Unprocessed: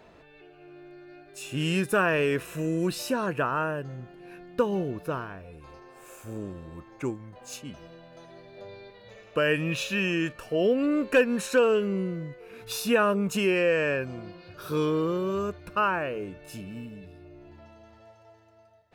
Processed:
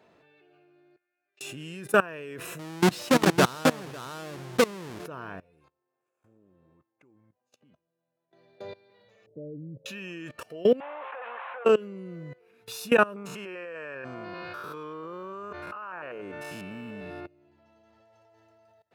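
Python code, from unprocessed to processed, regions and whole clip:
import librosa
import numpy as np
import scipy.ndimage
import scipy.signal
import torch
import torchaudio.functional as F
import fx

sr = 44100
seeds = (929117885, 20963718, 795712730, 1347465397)

y = fx.chain(x, sr, fx.lowpass(hz=2500.0, slope=24),
    fx.differentiator(), at=(0.96, 1.41))
y = fx.chain(y, sr, fx.halfwave_hold(),
    fx.echo_single(ms=546, db=-3.0),
    fx.resample_linear(factor=2), at=(2.59, 5.06))
y = fx.chain(y, sr, fx.lowpass(hz=1800.0, slope=6),
    fx.level_steps(step_db=23), at=(5.68, 8.33))
y = fx.chain(y, sr, fx.gaussian_blur(sigma=21.0),
    fx.low_shelf(hz=88.0, db=-8.5),
    fx.comb(ms=7.0, depth=0.82), at=(9.26, 9.86))
y = fx.chain(y, sr, fx.delta_mod(bps=16000, step_db=-39.5),
    fx.highpass(hz=670.0, slope=24),
    fx.peak_eq(hz=960.0, db=14.0, octaves=1.6), at=(10.8, 11.65))
y = fx.chain(y, sr, fx.spec_steps(hold_ms=100),
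    fx.peak_eq(hz=1200.0, db=14.5, octaves=2.2),
    fx.over_compress(threshold_db=-29.0, ratio=-1.0), at=(13.16, 17.26))
y = fx.level_steps(y, sr, step_db=22)
y = scipy.signal.sosfilt(scipy.signal.butter(2, 120.0, 'highpass', fs=sr, output='sos'), y)
y = y * 10.0 ** (5.0 / 20.0)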